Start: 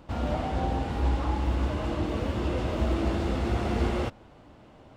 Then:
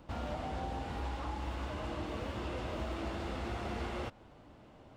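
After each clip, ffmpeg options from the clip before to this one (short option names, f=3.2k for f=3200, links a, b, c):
-filter_complex "[0:a]acrossover=split=600|4400[a][b][c];[a]acompressor=threshold=-34dB:ratio=4[d];[b]acompressor=threshold=-36dB:ratio=4[e];[c]acompressor=threshold=-56dB:ratio=4[f];[d][e][f]amix=inputs=3:normalize=0,volume=-4.5dB"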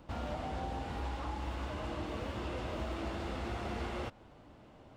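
-af anull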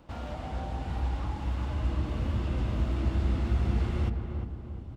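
-filter_complex "[0:a]asubboost=boost=6.5:cutoff=230,asplit=2[a][b];[b]adelay=352,lowpass=f=1.3k:p=1,volume=-5dB,asplit=2[c][d];[d]adelay=352,lowpass=f=1.3k:p=1,volume=0.48,asplit=2[e][f];[f]adelay=352,lowpass=f=1.3k:p=1,volume=0.48,asplit=2[g][h];[h]adelay=352,lowpass=f=1.3k:p=1,volume=0.48,asplit=2[i][j];[j]adelay=352,lowpass=f=1.3k:p=1,volume=0.48,asplit=2[k][l];[l]adelay=352,lowpass=f=1.3k:p=1,volume=0.48[m];[a][c][e][g][i][k][m]amix=inputs=7:normalize=0"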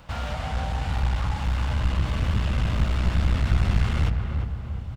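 -af "firequalizer=gain_entry='entry(150,0);entry(330,-14);entry(470,-4);entry(1500,4)':delay=0.05:min_phase=1,aeval=exprs='clip(val(0),-1,0.0224)':c=same,volume=8.5dB"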